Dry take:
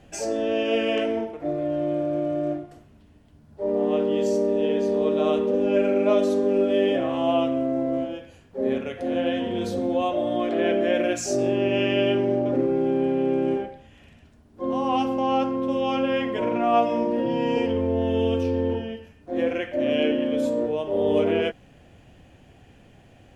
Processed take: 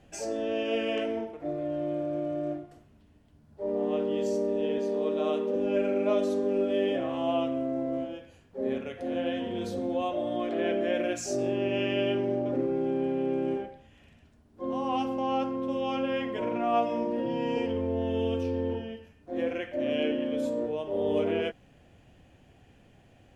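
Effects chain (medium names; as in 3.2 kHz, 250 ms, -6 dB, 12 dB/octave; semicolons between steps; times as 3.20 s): 4.78–5.56 s: high-pass 200 Hz 12 dB/octave; trim -6 dB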